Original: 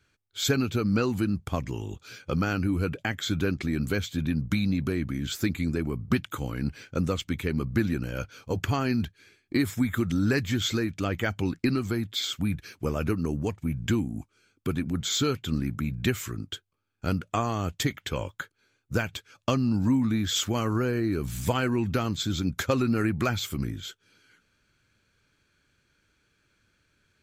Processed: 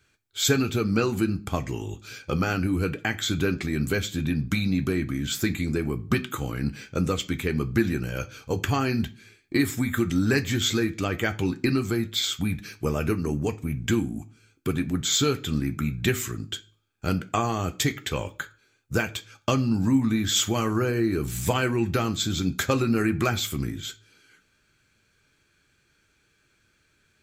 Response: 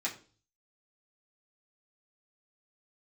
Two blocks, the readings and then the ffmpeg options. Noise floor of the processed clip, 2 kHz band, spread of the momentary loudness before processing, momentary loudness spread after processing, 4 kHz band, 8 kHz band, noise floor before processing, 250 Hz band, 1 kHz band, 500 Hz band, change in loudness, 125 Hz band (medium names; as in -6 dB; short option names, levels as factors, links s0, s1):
-67 dBFS, +3.5 dB, 9 LU, 9 LU, +3.5 dB, +6.0 dB, -71 dBFS, +1.5 dB, +2.5 dB, +3.0 dB, +2.5 dB, +1.5 dB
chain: -filter_complex "[0:a]asplit=2[s0][s1];[1:a]atrim=start_sample=2205,highshelf=f=4900:g=9.5[s2];[s1][s2]afir=irnorm=-1:irlink=0,volume=0.316[s3];[s0][s3]amix=inputs=2:normalize=0,volume=1.12"